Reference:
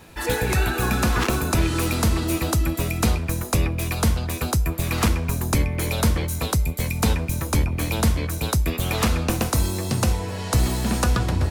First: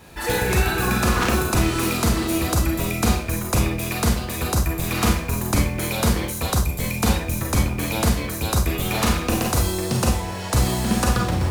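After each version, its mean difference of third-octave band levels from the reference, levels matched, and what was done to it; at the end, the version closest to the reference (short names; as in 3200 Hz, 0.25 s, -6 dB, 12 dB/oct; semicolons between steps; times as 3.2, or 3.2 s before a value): 3.0 dB: in parallel at -10 dB: companded quantiser 4-bit; on the sum: Schroeder reverb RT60 0.33 s, combs from 31 ms, DRR 0.5 dB; gain -3 dB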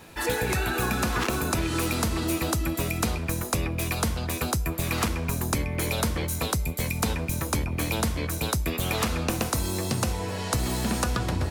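2.0 dB: low shelf 110 Hz -6.5 dB; compressor, threshold -22 dBFS, peak gain reduction 6.5 dB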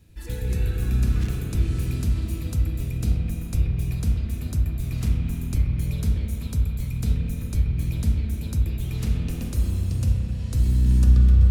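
9.5 dB: passive tone stack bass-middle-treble 10-0-1; spring tank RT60 3.5 s, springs 32/42 ms, chirp 50 ms, DRR -1 dB; gain +6.5 dB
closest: second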